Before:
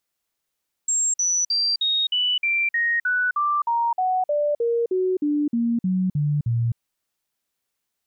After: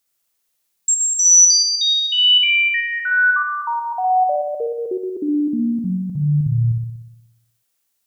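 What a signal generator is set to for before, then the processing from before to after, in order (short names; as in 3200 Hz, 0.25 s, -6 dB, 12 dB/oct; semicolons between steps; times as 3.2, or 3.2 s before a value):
stepped sine 7480 Hz down, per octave 3, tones 19, 0.26 s, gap 0.05 s -18.5 dBFS
high shelf 4400 Hz +9 dB; on a send: flutter echo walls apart 10.4 m, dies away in 0.94 s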